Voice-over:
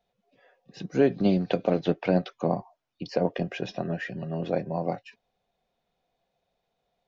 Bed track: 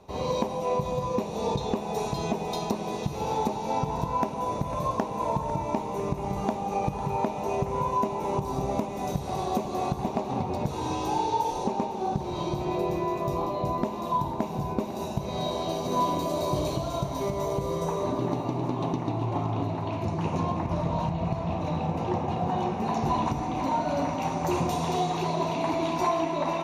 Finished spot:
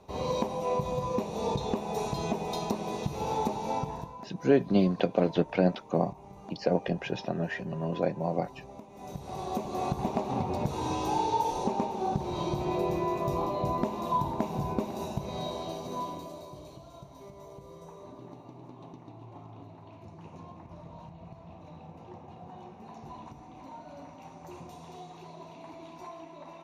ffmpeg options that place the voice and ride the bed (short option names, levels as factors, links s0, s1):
-filter_complex "[0:a]adelay=3500,volume=0.891[s0];[1:a]volume=5.31,afade=t=out:st=3.68:d=0.48:silence=0.158489,afade=t=in:st=8.87:d=1.15:silence=0.141254,afade=t=out:st=14.69:d=1.82:silence=0.133352[s1];[s0][s1]amix=inputs=2:normalize=0"